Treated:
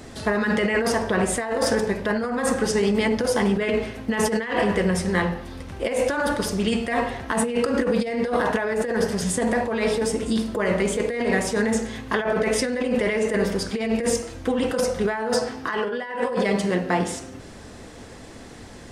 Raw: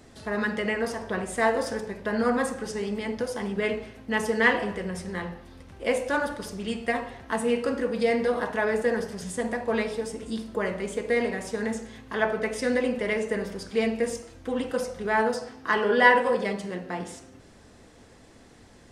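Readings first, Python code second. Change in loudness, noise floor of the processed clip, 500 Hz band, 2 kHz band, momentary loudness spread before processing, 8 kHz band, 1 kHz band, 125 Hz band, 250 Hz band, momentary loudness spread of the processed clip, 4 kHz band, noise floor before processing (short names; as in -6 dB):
+3.5 dB, -41 dBFS, +4.0 dB, +0.5 dB, 10 LU, +10.0 dB, +1.5 dB, +9.5 dB, +6.5 dB, 7 LU, +6.0 dB, -52 dBFS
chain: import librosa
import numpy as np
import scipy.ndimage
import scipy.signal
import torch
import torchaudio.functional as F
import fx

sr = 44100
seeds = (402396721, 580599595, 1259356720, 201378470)

y = fx.over_compress(x, sr, threshold_db=-30.0, ratio=-1.0)
y = y * 10.0 ** (7.5 / 20.0)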